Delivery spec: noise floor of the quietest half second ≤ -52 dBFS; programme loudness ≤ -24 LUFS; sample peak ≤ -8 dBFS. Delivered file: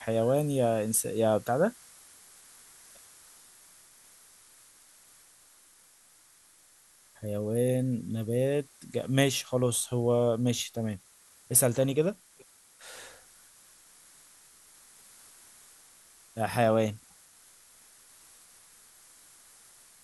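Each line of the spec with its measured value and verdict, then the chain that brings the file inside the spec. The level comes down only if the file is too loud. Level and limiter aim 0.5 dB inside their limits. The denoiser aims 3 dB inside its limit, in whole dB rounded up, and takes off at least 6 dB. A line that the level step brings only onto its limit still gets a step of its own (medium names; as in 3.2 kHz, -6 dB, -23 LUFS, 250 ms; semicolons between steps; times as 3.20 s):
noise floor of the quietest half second -60 dBFS: pass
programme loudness -28.0 LUFS: pass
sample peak -9.5 dBFS: pass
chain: none needed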